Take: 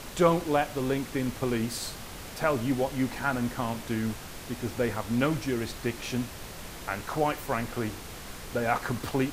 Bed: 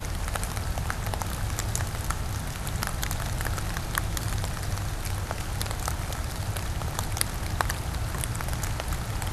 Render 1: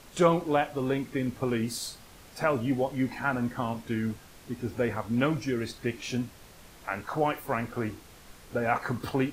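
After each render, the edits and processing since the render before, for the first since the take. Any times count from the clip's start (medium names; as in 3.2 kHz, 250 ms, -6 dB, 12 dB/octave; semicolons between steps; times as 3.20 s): noise print and reduce 10 dB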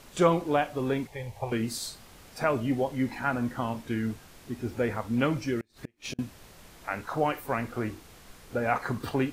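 1.07–1.52 s: FFT filter 120 Hz 0 dB, 270 Hz -26 dB, 480 Hz -2 dB, 870 Hz +9 dB, 1.3 kHz -18 dB, 1.9 kHz -3 dB; 5.60–6.19 s: inverted gate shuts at -23 dBFS, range -36 dB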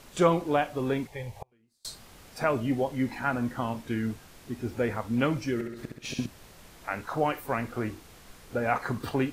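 1.36–1.85 s: inverted gate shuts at -28 dBFS, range -38 dB; 5.53–6.26 s: flutter echo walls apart 11.2 m, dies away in 0.87 s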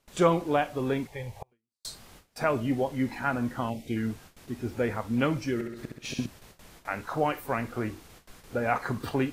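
gate with hold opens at -40 dBFS; 3.70–3.96 s: time-frequency box 850–1900 Hz -20 dB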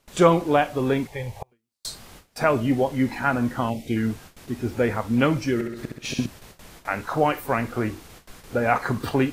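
trim +6 dB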